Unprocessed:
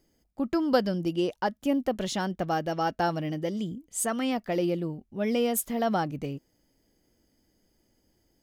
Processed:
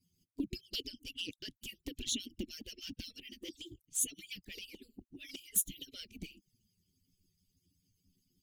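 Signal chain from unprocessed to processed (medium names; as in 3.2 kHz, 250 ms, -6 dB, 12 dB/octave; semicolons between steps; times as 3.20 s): harmonic-percussive separation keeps percussive; Chebyshev band-stop 290–2700 Hz, order 3; touch-sensitive flanger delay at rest 12 ms, full sweep at -37.5 dBFS; trim +3.5 dB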